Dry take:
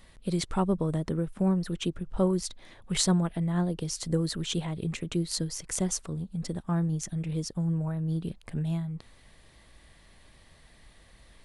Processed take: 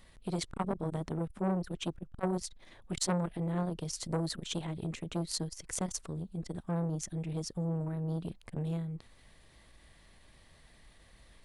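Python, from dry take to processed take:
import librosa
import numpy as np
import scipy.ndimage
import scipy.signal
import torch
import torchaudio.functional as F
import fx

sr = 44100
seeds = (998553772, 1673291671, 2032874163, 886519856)

y = fx.transformer_sat(x, sr, knee_hz=1100.0)
y = F.gain(torch.from_numpy(y), -3.0).numpy()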